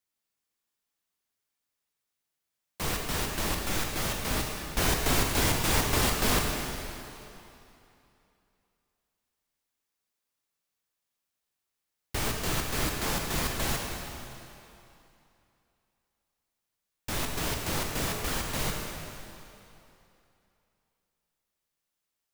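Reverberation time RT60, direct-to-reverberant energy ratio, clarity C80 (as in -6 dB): 2.9 s, 0.5 dB, 2.5 dB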